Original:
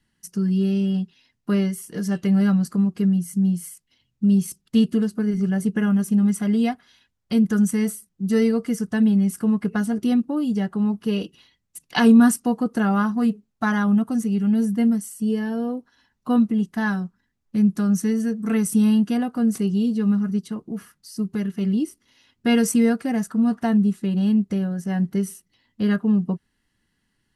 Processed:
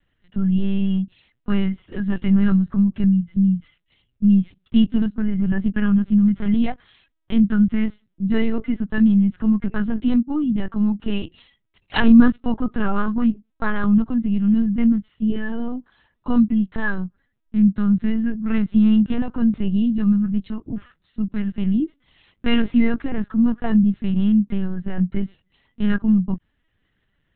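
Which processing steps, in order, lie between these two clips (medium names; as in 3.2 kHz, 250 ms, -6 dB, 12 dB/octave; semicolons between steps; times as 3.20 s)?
dynamic bell 520 Hz, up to -7 dB, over -40 dBFS, Q 2.1; LPC vocoder at 8 kHz pitch kept; trim +3 dB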